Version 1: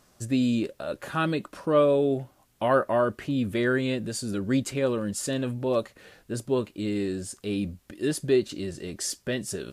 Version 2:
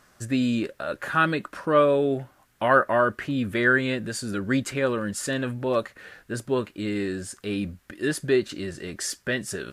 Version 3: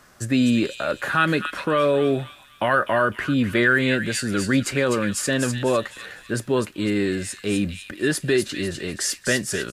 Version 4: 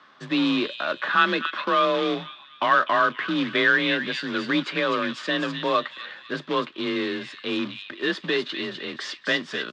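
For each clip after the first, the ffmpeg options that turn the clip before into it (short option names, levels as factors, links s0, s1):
-af "equalizer=f=1600:w=1.3:g=10"
-filter_complex "[0:a]acrossover=split=110|1800[s0][s1][s2];[s1]alimiter=limit=0.119:level=0:latency=1[s3];[s2]aecho=1:1:251|502|753|1004|1255:0.562|0.214|0.0812|0.0309|0.0117[s4];[s0][s3][s4]amix=inputs=3:normalize=0,volume=1.88"
-af "acrusher=bits=3:mode=log:mix=0:aa=0.000001,afreqshift=33,highpass=260,equalizer=f=440:t=q:w=4:g=-5,equalizer=f=690:t=q:w=4:g=-4,equalizer=f=1100:t=q:w=4:g=8,equalizer=f=3500:t=q:w=4:g=8,lowpass=f=4100:w=0.5412,lowpass=f=4100:w=1.3066,volume=0.841"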